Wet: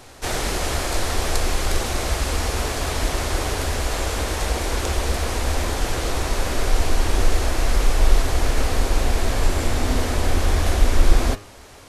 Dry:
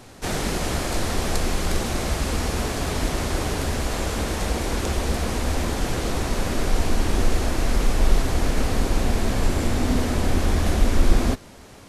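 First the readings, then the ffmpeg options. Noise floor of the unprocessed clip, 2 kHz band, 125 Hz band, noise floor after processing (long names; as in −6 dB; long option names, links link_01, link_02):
−44 dBFS, +2.5 dB, +0.5 dB, −43 dBFS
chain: -af "equalizer=frequency=190:width=1.1:gain=-10,bandreject=frequency=101.9:width_type=h:width=4,bandreject=frequency=203.8:width_type=h:width=4,bandreject=frequency=305.7:width_type=h:width=4,bandreject=frequency=407.6:width_type=h:width=4,bandreject=frequency=509.5:width_type=h:width=4,bandreject=frequency=611.4:width_type=h:width=4,bandreject=frequency=713.3:width_type=h:width=4,bandreject=frequency=815.2:width_type=h:width=4,bandreject=frequency=917.1:width_type=h:width=4,bandreject=frequency=1019:width_type=h:width=4,bandreject=frequency=1120.9:width_type=h:width=4,bandreject=frequency=1222.8:width_type=h:width=4,bandreject=frequency=1324.7:width_type=h:width=4,bandreject=frequency=1426.6:width_type=h:width=4,bandreject=frequency=1528.5:width_type=h:width=4,bandreject=frequency=1630.4:width_type=h:width=4,bandreject=frequency=1732.3:width_type=h:width=4,bandreject=frequency=1834.2:width_type=h:width=4,bandreject=frequency=1936.1:width_type=h:width=4,bandreject=frequency=2038:width_type=h:width=4,bandreject=frequency=2139.9:width_type=h:width=4,bandreject=frequency=2241.8:width_type=h:width=4,bandreject=frequency=2343.7:width_type=h:width=4,bandreject=frequency=2445.6:width_type=h:width=4,bandreject=frequency=2547.5:width_type=h:width=4,bandreject=frequency=2649.4:width_type=h:width=4,bandreject=frequency=2751.3:width_type=h:width=4,bandreject=frequency=2853.2:width_type=h:width=4,bandreject=frequency=2955.1:width_type=h:width=4,bandreject=frequency=3057:width_type=h:width=4,volume=3dB"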